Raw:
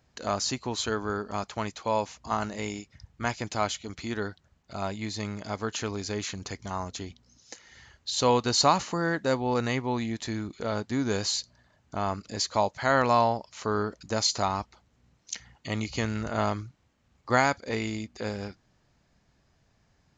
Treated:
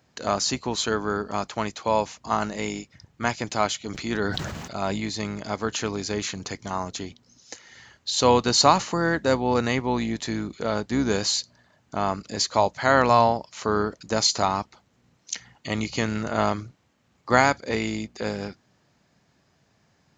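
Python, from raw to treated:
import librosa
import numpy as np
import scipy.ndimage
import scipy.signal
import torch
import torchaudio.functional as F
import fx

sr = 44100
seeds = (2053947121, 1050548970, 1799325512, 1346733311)

y = fx.octave_divider(x, sr, octaves=2, level_db=-5.0)
y = scipy.signal.sosfilt(scipy.signal.butter(2, 120.0, 'highpass', fs=sr, output='sos'), y)
y = fx.sustainer(y, sr, db_per_s=31.0, at=(3.86, 5.04))
y = F.gain(torch.from_numpy(y), 4.5).numpy()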